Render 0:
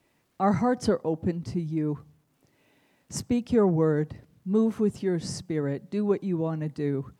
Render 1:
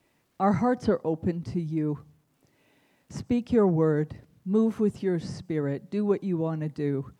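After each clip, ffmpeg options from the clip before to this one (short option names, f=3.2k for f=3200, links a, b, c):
-filter_complex "[0:a]acrossover=split=3900[a][b];[b]acompressor=threshold=-53dB:ratio=4:attack=1:release=60[c];[a][c]amix=inputs=2:normalize=0"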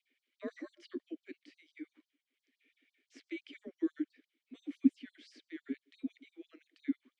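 -filter_complex "[0:a]afreqshift=-150,asplit=3[a][b][c];[a]bandpass=f=270:t=q:w=8,volume=0dB[d];[b]bandpass=f=2.29k:t=q:w=8,volume=-6dB[e];[c]bandpass=f=3.01k:t=q:w=8,volume=-9dB[f];[d][e][f]amix=inputs=3:normalize=0,afftfilt=real='re*gte(b*sr/1024,240*pow(4200/240,0.5+0.5*sin(2*PI*5.9*pts/sr)))':imag='im*gte(b*sr/1024,240*pow(4200/240,0.5+0.5*sin(2*PI*5.9*pts/sr)))':win_size=1024:overlap=0.75,volume=7dB"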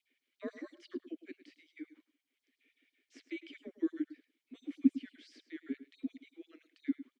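-af "aecho=1:1:106:0.188"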